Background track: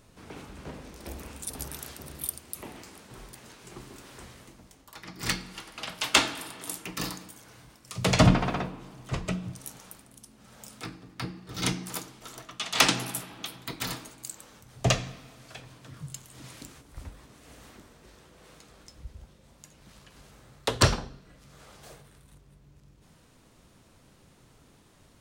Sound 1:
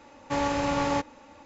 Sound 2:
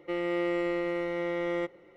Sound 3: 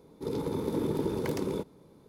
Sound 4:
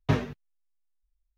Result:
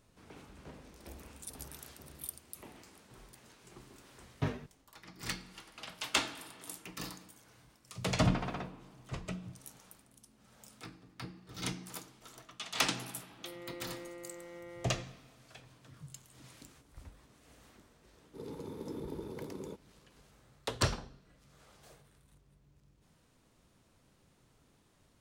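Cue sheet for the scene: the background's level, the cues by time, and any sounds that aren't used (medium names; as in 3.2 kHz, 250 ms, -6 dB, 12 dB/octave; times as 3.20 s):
background track -9.5 dB
4.33 s: add 4 -9.5 dB
13.36 s: add 2 -17.5 dB
18.13 s: add 3 -12 dB
not used: 1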